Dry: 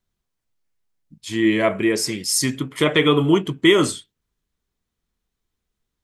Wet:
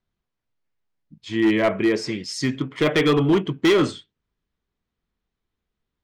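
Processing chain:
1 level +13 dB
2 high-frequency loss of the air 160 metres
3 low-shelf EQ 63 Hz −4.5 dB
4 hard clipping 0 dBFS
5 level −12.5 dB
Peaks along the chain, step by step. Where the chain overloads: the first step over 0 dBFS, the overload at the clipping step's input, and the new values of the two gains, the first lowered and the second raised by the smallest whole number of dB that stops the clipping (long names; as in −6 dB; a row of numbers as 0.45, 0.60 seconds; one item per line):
+11.0, +9.5, +9.5, 0.0, −12.5 dBFS
step 1, 9.5 dB
step 1 +3 dB, step 5 −2.5 dB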